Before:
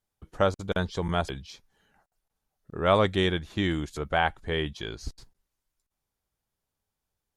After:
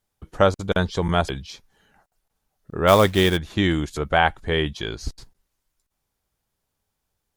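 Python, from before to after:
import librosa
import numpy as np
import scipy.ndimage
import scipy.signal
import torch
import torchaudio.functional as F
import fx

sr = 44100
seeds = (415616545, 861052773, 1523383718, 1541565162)

y = fx.quant_float(x, sr, bits=2, at=(2.87, 3.36), fade=0.02)
y = y * 10.0 ** (6.5 / 20.0)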